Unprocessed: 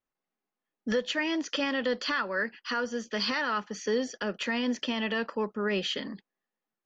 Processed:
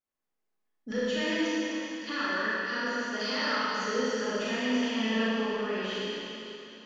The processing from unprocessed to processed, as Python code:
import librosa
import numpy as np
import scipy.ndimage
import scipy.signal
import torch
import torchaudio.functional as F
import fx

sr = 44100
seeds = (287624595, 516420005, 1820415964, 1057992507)

y = fx.fade_out_tail(x, sr, length_s=1.55)
y = fx.level_steps(y, sr, step_db=23, at=(1.48, 2.06), fade=0.02)
y = fx.highpass(y, sr, hz=180.0, slope=12, at=(2.91, 3.54))
y = fx.rev_schroeder(y, sr, rt60_s=3.2, comb_ms=28, drr_db=-9.5)
y = y * librosa.db_to_amplitude(-9.0)